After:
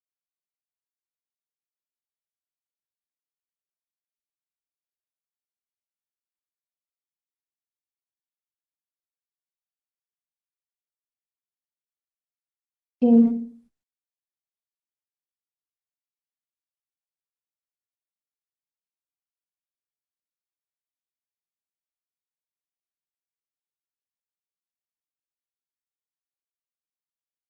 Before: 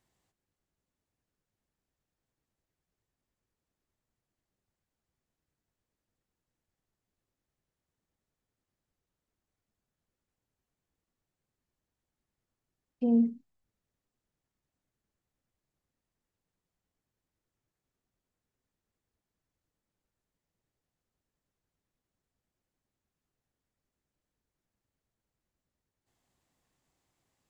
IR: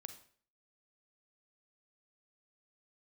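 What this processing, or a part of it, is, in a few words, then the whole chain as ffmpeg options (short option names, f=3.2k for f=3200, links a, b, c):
speakerphone in a meeting room: -filter_complex "[1:a]atrim=start_sample=2205[a];[0:a][a]afir=irnorm=-1:irlink=0,asplit=2[b][c];[c]adelay=90,highpass=300,lowpass=3.4k,asoftclip=type=hard:threshold=-31.5dB,volume=-13dB[d];[b][d]amix=inputs=2:normalize=0,dynaudnorm=f=940:g=13:m=16dB,agate=range=-43dB:threshold=-54dB:ratio=16:detection=peak" -ar 48000 -c:a libopus -b:a 32k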